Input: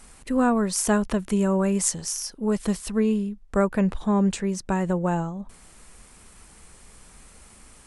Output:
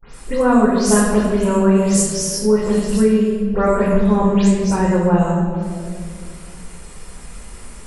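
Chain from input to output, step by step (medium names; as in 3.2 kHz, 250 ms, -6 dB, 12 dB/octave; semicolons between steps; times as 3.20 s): delay that grows with frequency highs late, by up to 132 ms; gate with hold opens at -42 dBFS; reverberation RT60 1.9 s, pre-delay 4 ms, DRR -4 dB; in parallel at -2.5 dB: compression, threshold -26 dBFS, peak gain reduction 15.5 dB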